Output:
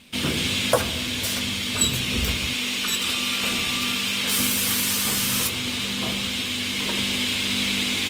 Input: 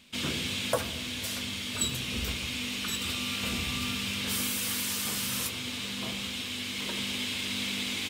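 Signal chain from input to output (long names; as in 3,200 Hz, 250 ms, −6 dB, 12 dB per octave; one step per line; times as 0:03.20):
0:02.53–0:04.38: parametric band 62 Hz −12.5 dB 2.9 octaves
level +8.5 dB
Opus 32 kbit/s 48,000 Hz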